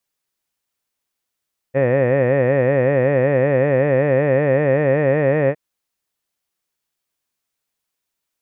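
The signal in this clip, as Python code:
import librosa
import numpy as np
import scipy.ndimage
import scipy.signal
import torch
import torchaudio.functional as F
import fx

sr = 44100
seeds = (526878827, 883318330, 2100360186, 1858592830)

y = fx.vowel(sr, seeds[0], length_s=3.81, word='head', hz=129.0, glide_st=2.0, vibrato_hz=5.3, vibrato_st=1.35)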